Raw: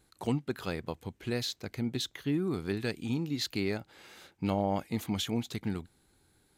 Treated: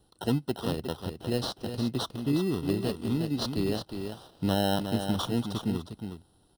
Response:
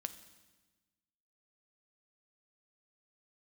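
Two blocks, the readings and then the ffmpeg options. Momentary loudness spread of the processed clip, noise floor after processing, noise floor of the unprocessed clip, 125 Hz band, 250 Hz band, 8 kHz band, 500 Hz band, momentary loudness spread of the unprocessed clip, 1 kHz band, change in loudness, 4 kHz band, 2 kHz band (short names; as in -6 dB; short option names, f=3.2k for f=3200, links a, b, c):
10 LU, -64 dBFS, -69 dBFS, +4.0 dB, +4.0 dB, +0.5 dB, +3.5 dB, 9 LU, +3.5 dB, +3.5 dB, +2.5 dB, -1.5 dB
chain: -filter_complex "[0:a]aecho=1:1:360:0.422,aresample=22050,aresample=44100,bandreject=f=1.1k:w=5.3,acrossover=split=320|4300[a][b][c];[b]acrusher=samples=19:mix=1:aa=0.000001[d];[a][d][c]amix=inputs=3:normalize=0,superequalizer=11b=0.447:13b=1.58:15b=0.251,volume=3.5dB"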